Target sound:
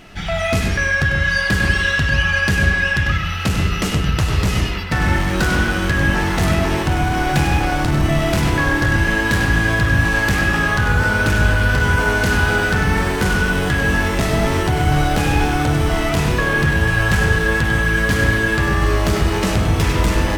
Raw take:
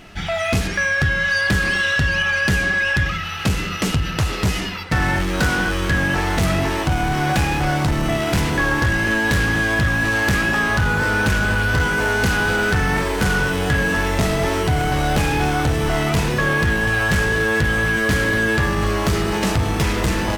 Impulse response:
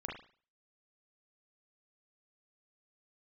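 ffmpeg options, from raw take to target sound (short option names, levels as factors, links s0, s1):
-filter_complex "[0:a]asplit=2[s0][s1];[1:a]atrim=start_sample=2205,lowshelf=f=96:g=11.5,adelay=98[s2];[s1][s2]afir=irnorm=-1:irlink=0,volume=0.562[s3];[s0][s3]amix=inputs=2:normalize=0"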